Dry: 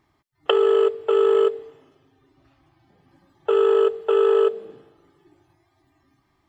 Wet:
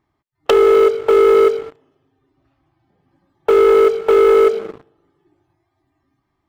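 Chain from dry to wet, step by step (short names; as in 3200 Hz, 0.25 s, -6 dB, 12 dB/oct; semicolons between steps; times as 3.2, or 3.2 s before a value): high shelf 2200 Hz -6.5 dB; sample leveller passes 3; in parallel at -9.5 dB: wavefolder -23 dBFS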